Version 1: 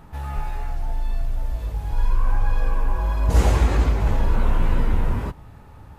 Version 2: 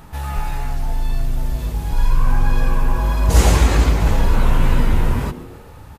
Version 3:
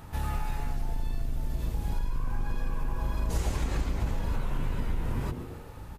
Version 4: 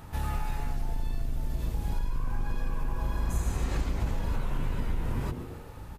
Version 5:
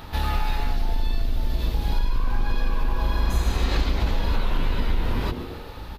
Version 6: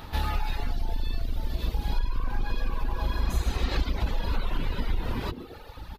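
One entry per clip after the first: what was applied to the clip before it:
treble shelf 2.8 kHz +9 dB; frequency-shifting echo 132 ms, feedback 52%, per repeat +110 Hz, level -18 dB; trim +4 dB
octave divider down 1 oct, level -1 dB; compression 6:1, threshold -20 dBFS, peak gain reduction 15 dB; trim -5.5 dB
spectral replace 3.17–3.64 s, 260–5900 Hz both
graphic EQ 125/4000/8000 Hz -8/+11/-11 dB; trim +8 dB
reverb removal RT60 1.1 s; trim -2 dB

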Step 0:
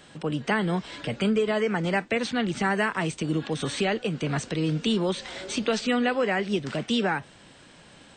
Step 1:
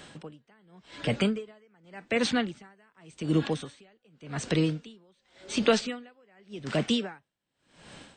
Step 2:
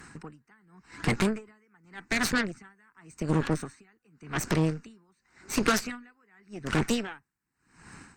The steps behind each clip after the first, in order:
logarithmic tremolo 0.88 Hz, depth 40 dB; trim +3.5 dB
static phaser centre 1.4 kHz, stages 4; harmonic-percussive split percussive +6 dB; Chebyshev shaper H 8 -14 dB, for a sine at -12.5 dBFS

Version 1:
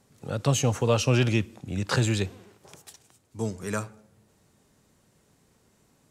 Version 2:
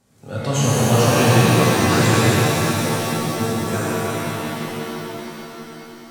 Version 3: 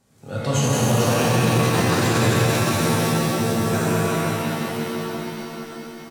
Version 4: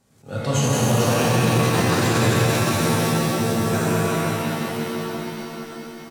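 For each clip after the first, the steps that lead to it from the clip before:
pitch-shifted reverb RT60 3.9 s, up +7 st, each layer -2 dB, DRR -8.5 dB; trim -1.5 dB
peak limiter -10.5 dBFS, peak gain reduction 9 dB; delay 183 ms -5 dB; on a send at -15.5 dB: reverberation RT60 2.7 s, pre-delay 3 ms; on the sum: trim -1 dB
attacks held to a fixed rise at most 220 dB/s

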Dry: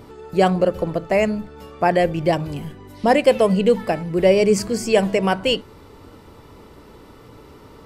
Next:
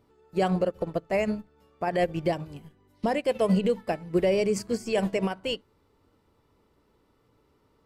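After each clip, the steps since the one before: peak limiter -14 dBFS, peak gain reduction 11.5 dB; upward expansion 2.5:1, over -33 dBFS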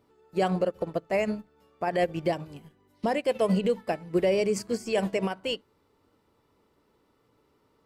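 bass shelf 95 Hz -10 dB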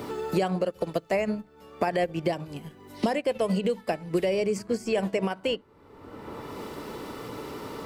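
three bands compressed up and down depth 100%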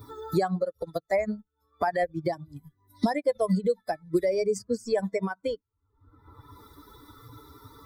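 expander on every frequency bin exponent 2; Butterworth band-stop 2.8 kHz, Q 2.3; trim +4 dB

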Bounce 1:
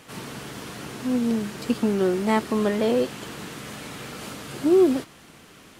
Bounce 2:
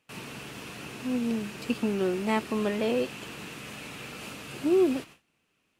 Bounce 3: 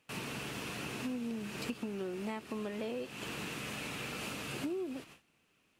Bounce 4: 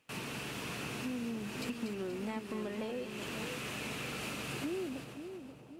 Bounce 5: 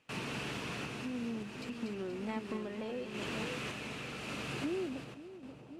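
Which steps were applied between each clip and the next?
gate with hold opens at -35 dBFS; peaking EQ 2.6 kHz +10 dB 0.31 oct; trim -5.5 dB
compression 16:1, threshold -36 dBFS, peak gain reduction 18 dB; trim +1 dB
saturation -27 dBFS, distortion -27 dB; on a send: two-band feedback delay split 980 Hz, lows 534 ms, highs 239 ms, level -8 dB
random-step tremolo; distance through air 51 m; trim +2.5 dB

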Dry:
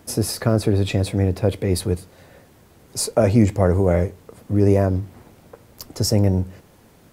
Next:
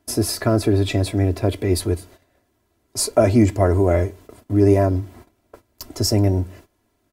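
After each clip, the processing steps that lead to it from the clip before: gate -43 dBFS, range -17 dB; comb 3 ms, depth 67%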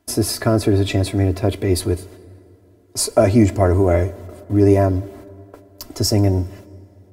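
plate-style reverb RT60 3.5 s, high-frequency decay 0.45×, DRR 20 dB; trim +1.5 dB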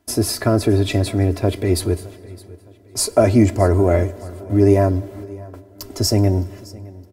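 feedback delay 614 ms, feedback 37%, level -21.5 dB

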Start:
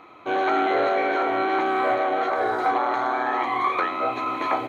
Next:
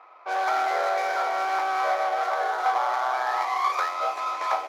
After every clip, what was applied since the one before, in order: median filter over 15 samples; level-controlled noise filter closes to 2.2 kHz, open at -22.5 dBFS; high-pass 600 Hz 24 dB/octave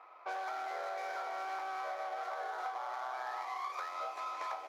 compression 10:1, threshold -31 dBFS, peak gain reduction 12.5 dB; trim -5.5 dB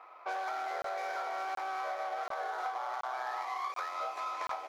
crackling interface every 0.73 s, samples 1024, zero, from 0.82 s; trim +3 dB

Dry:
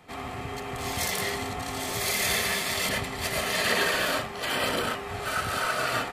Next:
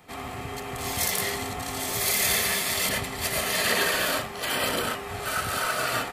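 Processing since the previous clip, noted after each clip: treble shelf 8.7 kHz +9.5 dB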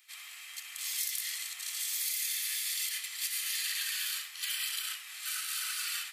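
Bessel high-pass 3 kHz, order 4; flutter echo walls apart 11.5 m, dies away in 0.28 s; compression 6:1, threshold -31 dBFS, peak gain reduction 9.5 dB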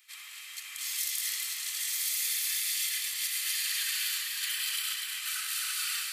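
high-pass 810 Hz 24 dB/octave; two-band feedback delay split 2.5 kHz, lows 543 ms, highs 246 ms, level -3.5 dB; trim +1 dB

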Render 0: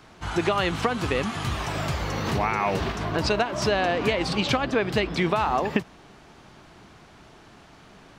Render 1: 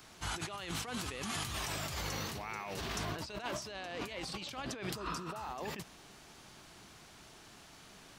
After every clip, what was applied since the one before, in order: pre-emphasis filter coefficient 0.8; spectral replace 4.98–5.44 s, 940–4600 Hz after; compressor with a negative ratio -42 dBFS, ratio -1; trim +1 dB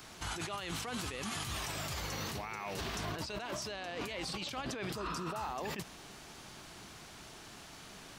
peak limiter -34 dBFS, peak gain reduction 11 dB; trim +4.5 dB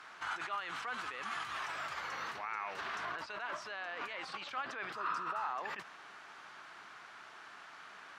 band-pass filter 1.4 kHz, Q 1.9; trim +6.5 dB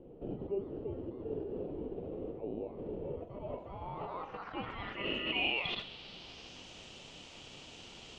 ring modulator 1.6 kHz; low-pass sweep 430 Hz -> 7 kHz, 3.03–6.69 s; flutter echo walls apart 7.4 m, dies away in 0.23 s; trim +3 dB

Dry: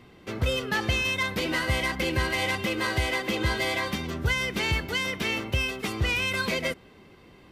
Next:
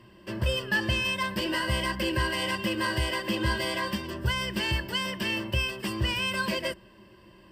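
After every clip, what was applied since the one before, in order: rippled EQ curve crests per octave 1.3, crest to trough 13 dB; trim -3.5 dB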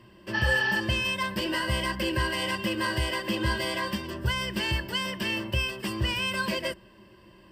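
spectral replace 0.37–0.74 s, 760–6200 Hz after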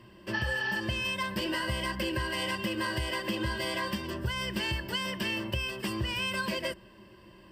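compression, threshold -28 dBFS, peak gain reduction 8 dB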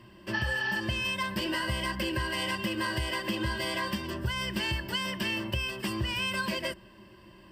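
peaking EQ 470 Hz -6 dB 0.29 oct; trim +1 dB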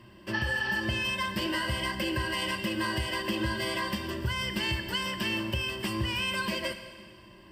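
reverberation RT60 1.8 s, pre-delay 18 ms, DRR 8.5 dB

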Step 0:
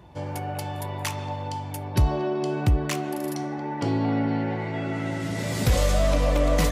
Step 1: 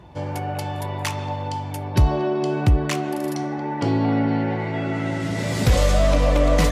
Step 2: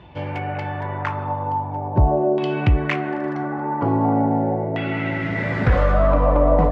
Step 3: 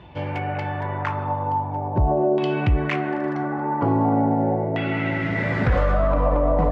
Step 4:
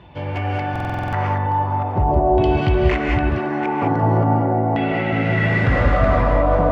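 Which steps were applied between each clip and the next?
treble shelf 11 kHz -10 dB; trim +4 dB
LFO low-pass saw down 0.42 Hz 590–3100 Hz
peak limiter -11 dBFS, peak gain reduction 5.5 dB
chunks repeated in reverse 366 ms, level -2.5 dB; gated-style reverb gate 230 ms rising, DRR 1 dB; buffer glitch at 0.71 s, samples 2048, times 8

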